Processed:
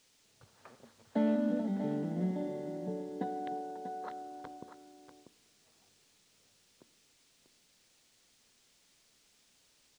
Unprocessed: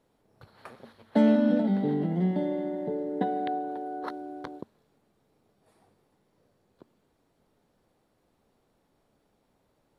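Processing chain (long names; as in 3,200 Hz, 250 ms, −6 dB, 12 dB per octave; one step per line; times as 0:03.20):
on a send at −18 dB: convolution reverb RT60 2.0 s, pre-delay 3 ms
on the sum: background noise violet −42 dBFS
high-frequency loss of the air 120 metres
single-tap delay 641 ms −10 dB
level −8.5 dB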